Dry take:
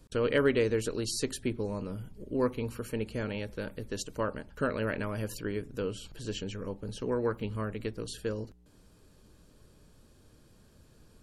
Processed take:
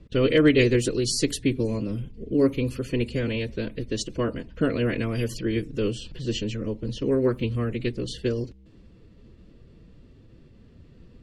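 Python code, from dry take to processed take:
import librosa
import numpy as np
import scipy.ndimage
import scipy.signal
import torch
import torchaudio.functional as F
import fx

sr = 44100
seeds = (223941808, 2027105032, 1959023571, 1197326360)

y = fx.pitch_keep_formants(x, sr, semitones=1.5)
y = fx.band_shelf(y, sr, hz=1000.0, db=-9.5, octaves=1.7)
y = fx.env_lowpass(y, sr, base_hz=2200.0, full_db=-28.5)
y = F.gain(torch.from_numpy(y), 9.0).numpy()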